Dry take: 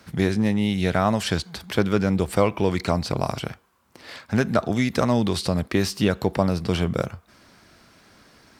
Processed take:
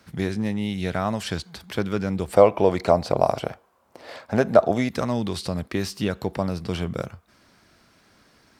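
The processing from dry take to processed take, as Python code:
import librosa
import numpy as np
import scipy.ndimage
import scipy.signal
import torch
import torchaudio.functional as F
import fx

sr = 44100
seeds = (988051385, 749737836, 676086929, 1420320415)

y = fx.peak_eq(x, sr, hz=620.0, db=13.5, octaves=1.4, at=(2.33, 4.89))
y = y * 10.0 ** (-4.5 / 20.0)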